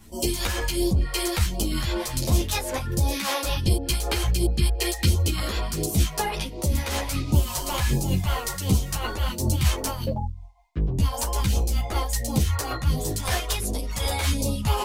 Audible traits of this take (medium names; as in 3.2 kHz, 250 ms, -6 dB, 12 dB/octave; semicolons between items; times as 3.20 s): phasing stages 2, 1.4 Hz, lowest notch 130–1700 Hz; tremolo triangle 5.2 Hz, depth 45%; a shimmering, thickened sound